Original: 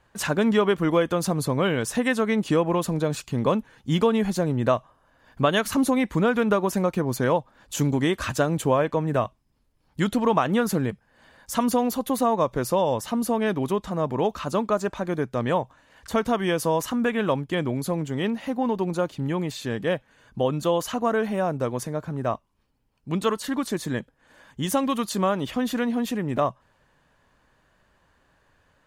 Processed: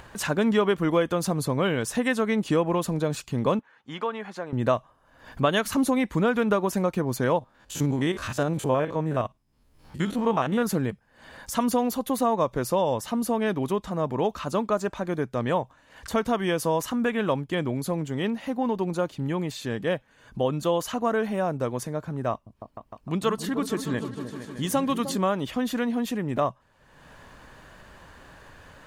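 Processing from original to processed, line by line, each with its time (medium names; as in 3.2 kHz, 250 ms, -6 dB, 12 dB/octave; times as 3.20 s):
3.59–4.53 s: band-pass filter 1.3 kHz, Q 0.98
7.39–10.63 s: spectrogram pixelated in time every 50 ms
22.31–25.17 s: delay with an opening low-pass 153 ms, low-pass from 200 Hz, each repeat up 2 oct, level -6 dB
whole clip: upward compressor, threshold -32 dBFS; trim -1.5 dB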